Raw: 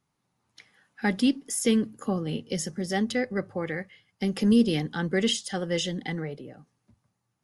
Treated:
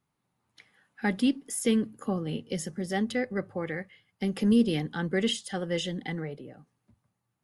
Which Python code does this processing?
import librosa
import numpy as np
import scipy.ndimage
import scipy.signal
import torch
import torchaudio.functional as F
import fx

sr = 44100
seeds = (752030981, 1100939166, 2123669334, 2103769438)

y = fx.peak_eq(x, sr, hz=5700.0, db=-6.0, octaves=0.76)
y = y * librosa.db_to_amplitude(-2.0)